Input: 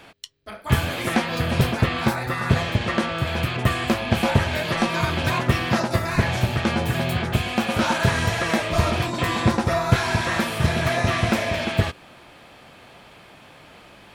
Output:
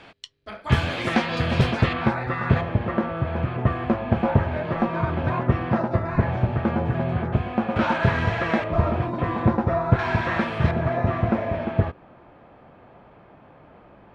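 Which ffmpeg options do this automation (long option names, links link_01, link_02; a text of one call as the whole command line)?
ffmpeg -i in.wav -af "asetnsamples=nb_out_samples=441:pad=0,asendcmd='1.93 lowpass f 2100;2.61 lowpass f 1200;7.76 lowpass f 2200;8.64 lowpass f 1200;9.99 lowpass f 2200;10.71 lowpass f 1100',lowpass=4700" out.wav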